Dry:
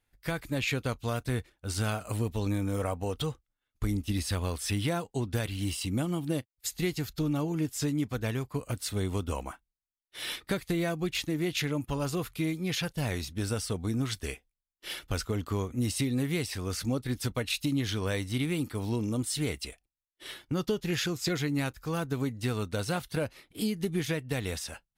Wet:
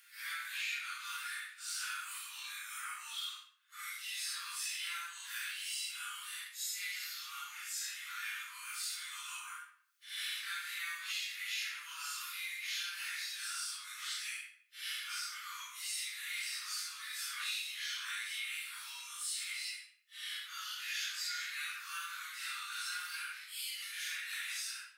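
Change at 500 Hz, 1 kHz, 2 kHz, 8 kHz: under -40 dB, -7.0 dB, -1.0 dB, -1.5 dB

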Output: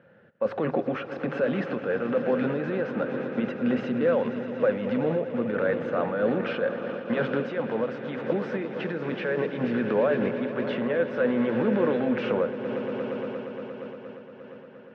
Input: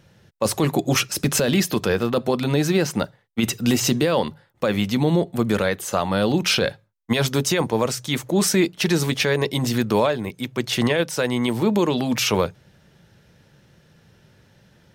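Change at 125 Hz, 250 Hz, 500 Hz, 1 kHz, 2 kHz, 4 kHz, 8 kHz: -11.5 dB, -5.5 dB, -2.0 dB, -6.5 dB, -6.0 dB, -20.0 dB, under -40 dB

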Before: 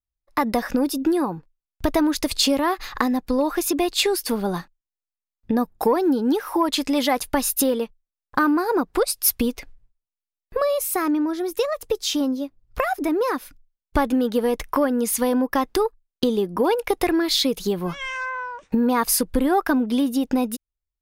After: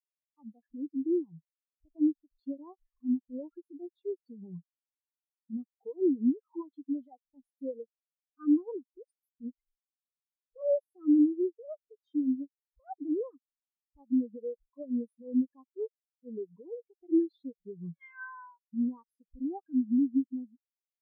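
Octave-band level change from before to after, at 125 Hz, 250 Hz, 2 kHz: under -15 dB, -8.0 dB, under -20 dB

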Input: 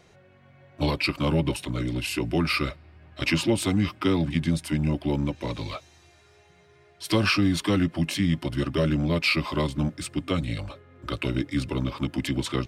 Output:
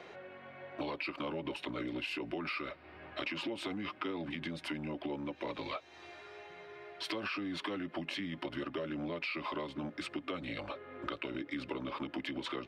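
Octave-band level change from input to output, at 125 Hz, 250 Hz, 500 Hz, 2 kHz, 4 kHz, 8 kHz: -22.5 dB, -14.0 dB, -10.5 dB, -10.0 dB, -11.5 dB, -21.0 dB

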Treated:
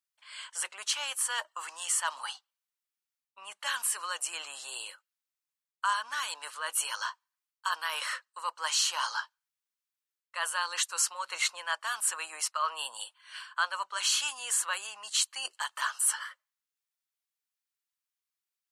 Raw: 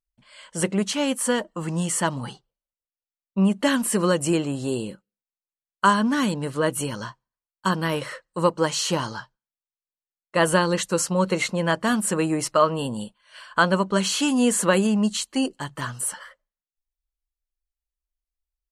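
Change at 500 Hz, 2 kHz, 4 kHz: -26.0 dB, -5.5 dB, -2.0 dB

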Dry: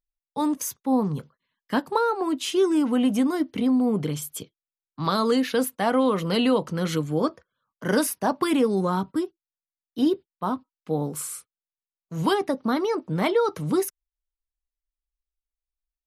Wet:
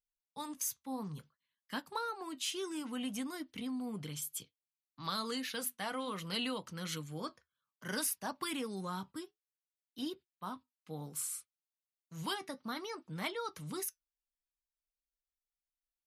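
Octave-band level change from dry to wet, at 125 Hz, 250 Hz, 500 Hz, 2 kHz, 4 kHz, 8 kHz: -16.0 dB, -18.5 dB, -20.0 dB, -10.5 dB, -7.5 dB, -6.0 dB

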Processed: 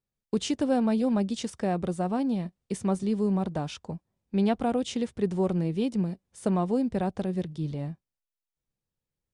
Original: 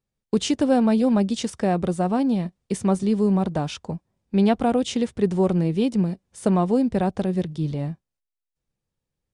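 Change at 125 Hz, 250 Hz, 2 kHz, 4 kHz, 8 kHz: -6.0 dB, -6.0 dB, -6.0 dB, -6.0 dB, -6.0 dB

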